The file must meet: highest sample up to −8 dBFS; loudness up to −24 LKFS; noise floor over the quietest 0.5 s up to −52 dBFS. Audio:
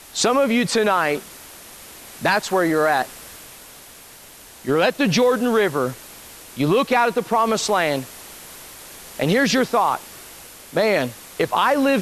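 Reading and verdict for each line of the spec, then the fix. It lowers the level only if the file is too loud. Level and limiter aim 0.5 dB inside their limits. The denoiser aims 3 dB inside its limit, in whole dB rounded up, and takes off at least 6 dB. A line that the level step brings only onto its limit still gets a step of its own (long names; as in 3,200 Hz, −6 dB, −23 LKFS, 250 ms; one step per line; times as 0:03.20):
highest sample −5.5 dBFS: out of spec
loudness −20.0 LKFS: out of spec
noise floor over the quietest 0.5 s −44 dBFS: out of spec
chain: broadband denoise 7 dB, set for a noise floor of −44 dBFS
level −4.5 dB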